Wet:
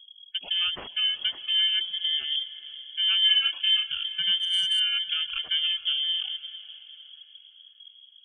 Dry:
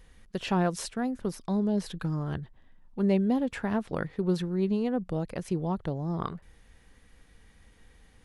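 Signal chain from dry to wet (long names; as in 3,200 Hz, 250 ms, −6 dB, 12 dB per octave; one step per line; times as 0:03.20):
samples in bit-reversed order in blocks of 32 samples
0:01.67–0:02.39: mains-hum notches 50/100/150/200/250/300 Hz
gate on every frequency bin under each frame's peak −20 dB strong
leveller curve on the samples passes 1
brickwall limiter −19.5 dBFS, peak gain reduction 5 dB
rotating-speaker cabinet horn 6 Hz, later 0.65 Hz, at 0:03.48
0:03.19–0:03.88: double-tracking delay 30 ms −2.5 dB
feedback delay with all-pass diffusion 460 ms, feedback 43%, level −15 dB
voice inversion scrambler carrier 3,300 Hz
0:04.38–0:04.80: saturating transformer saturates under 2,600 Hz
level +3 dB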